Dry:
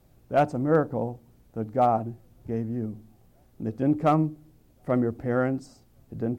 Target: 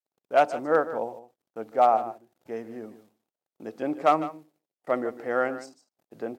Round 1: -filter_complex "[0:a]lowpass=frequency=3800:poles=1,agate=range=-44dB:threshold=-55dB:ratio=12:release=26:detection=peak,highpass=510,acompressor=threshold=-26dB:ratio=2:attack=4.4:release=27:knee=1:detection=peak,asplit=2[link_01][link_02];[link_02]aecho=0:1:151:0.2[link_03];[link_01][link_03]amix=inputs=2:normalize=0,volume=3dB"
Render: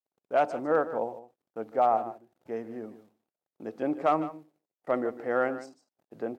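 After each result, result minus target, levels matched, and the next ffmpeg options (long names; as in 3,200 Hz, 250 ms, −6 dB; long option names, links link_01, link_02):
downward compressor: peak gain reduction +5 dB; 4,000 Hz band −4.0 dB
-filter_complex "[0:a]lowpass=frequency=3800:poles=1,agate=range=-44dB:threshold=-55dB:ratio=12:release=26:detection=peak,highpass=510,asplit=2[link_01][link_02];[link_02]aecho=0:1:151:0.2[link_03];[link_01][link_03]amix=inputs=2:normalize=0,volume=3dB"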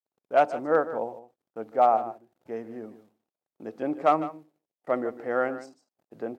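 4,000 Hz band −4.0 dB
-filter_complex "[0:a]lowpass=frequency=3800:poles=1,agate=range=-44dB:threshold=-55dB:ratio=12:release=26:detection=peak,highpass=510,highshelf=frequency=2800:gain=7.5,asplit=2[link_01][link_02];[link_02]aecho=0:1:151:0.2[link_03];[link_01][link_03]amix=inputs=2:normalize=0,volume=3dB"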